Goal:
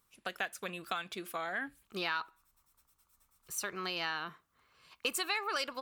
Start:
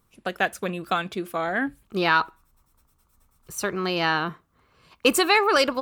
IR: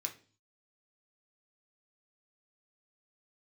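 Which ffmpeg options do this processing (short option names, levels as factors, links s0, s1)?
-af "tiltshelf=f=800:g=-6.5,acompressor=threshold=0.0447:ratio=2.5,volume=0.376"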